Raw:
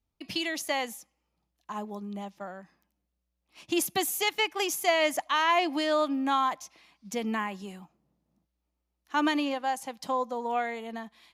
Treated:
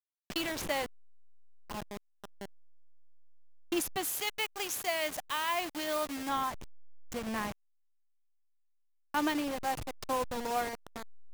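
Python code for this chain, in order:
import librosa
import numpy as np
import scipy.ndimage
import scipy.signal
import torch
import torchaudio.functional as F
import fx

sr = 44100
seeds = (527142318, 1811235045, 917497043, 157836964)

y = fx.delta_hold(x, sr, step_db=-29.5)
y = fx.tilt_eq(y, sr, slope=1.5, at=(4.04, 6.29))
y = fx.rider(y, sr, range_db=3, speed_s=0.5)
y = y * 10.0 ** (-5.5 / 20.0)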